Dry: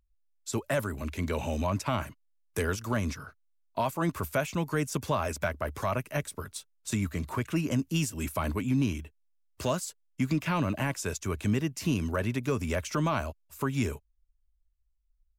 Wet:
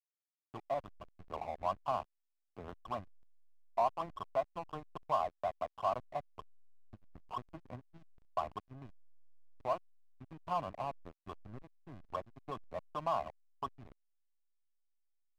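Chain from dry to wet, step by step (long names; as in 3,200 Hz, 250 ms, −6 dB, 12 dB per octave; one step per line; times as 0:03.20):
formant resonators in series a
slack as between gear wheels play −44 dBFS
level +7.5 dB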